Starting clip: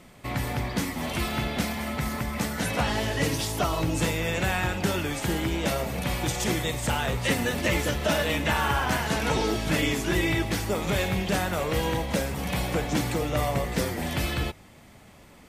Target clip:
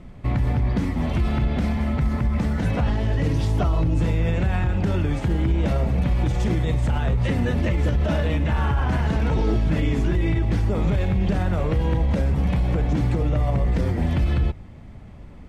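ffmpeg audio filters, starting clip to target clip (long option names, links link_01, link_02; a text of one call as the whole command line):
ffmpeg -i in.wav -af "aemphasis=mode=reproduction:type=riaa,alimiter=limit=-13.5dB:level=0:latency=1" out.wav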